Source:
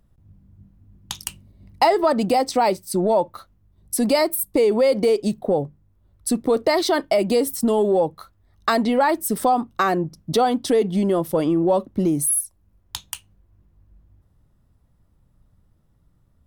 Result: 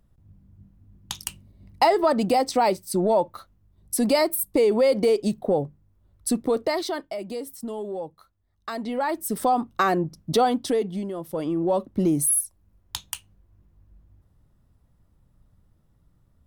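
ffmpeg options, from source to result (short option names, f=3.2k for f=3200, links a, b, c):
-af "volume=22dB,afade=t=out:st=6.29:d=0.83:silence=0.266073,afade=t=in:st=8.7:d=1.01:silence=0.251189,afade=t=out:st=10.43:d=0.7:silence=0.266073,afade=t=in:st=11.13:d=1:silence=0.251189"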